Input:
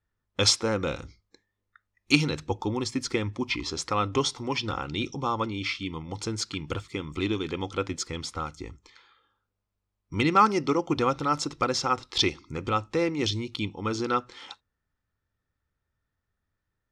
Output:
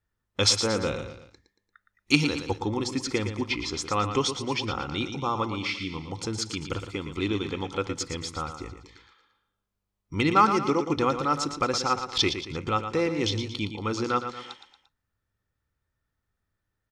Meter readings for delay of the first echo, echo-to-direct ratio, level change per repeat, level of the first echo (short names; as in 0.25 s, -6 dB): 0.115 s, -8.0 dB, -7.0 dB, -9.0 dB